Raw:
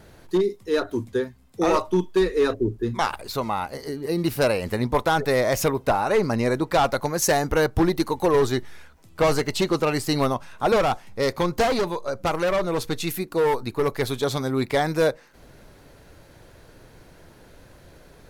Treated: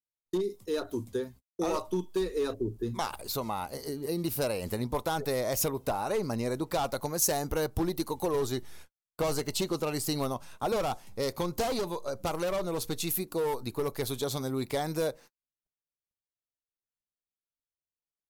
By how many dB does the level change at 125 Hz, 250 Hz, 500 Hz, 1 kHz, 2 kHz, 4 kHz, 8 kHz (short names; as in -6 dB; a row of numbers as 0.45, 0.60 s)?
-8.0, -8.5, -9.0, -10.0, -13.0, -6.5, -2.5 dB